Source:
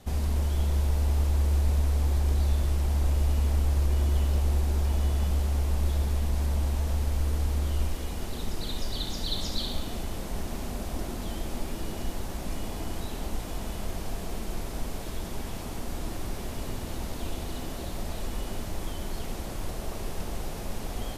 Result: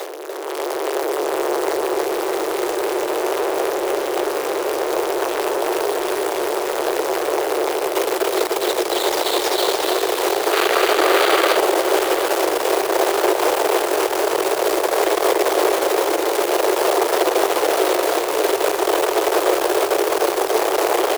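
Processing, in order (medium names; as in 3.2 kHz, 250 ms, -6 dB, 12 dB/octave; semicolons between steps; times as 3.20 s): one-bit comparator; in parallel at -10 dB: decimation with a swept rate 27×, swing 160% 0.51 Hz; on the sum: steep high-pass 360 Hz 72 dB/octave; tilt EQ -4 dB/octave; level rider gain up to 10 dB; treble shelf 9.6 kHz +9 dB; on a send: feedback delay 293 ms, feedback 53%, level -6 dB; on the sum: time-frequency box 10.53–11.57 s, 1.1–4.9 kHz +7 dB; bit-crushed delay 735 ms, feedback 35%, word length 5-bit, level -9.5 dB; trim +2 dB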